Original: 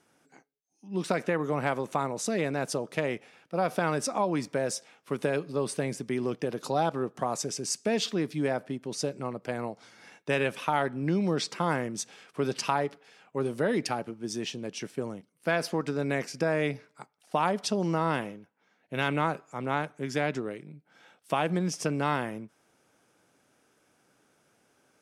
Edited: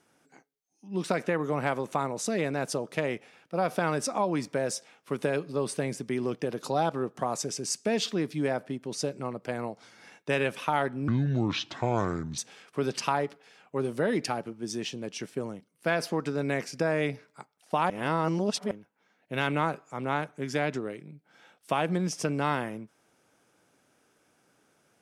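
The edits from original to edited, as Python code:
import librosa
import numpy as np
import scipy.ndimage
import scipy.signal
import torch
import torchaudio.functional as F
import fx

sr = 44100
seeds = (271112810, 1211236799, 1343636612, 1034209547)

y = fx.edit(x, sr, fx.speed_span(start_s=11.08, length_s=0.91, speed=0.7),
    fx.reverse_span(start_s=17.51, length_s=0.81), tone=tone)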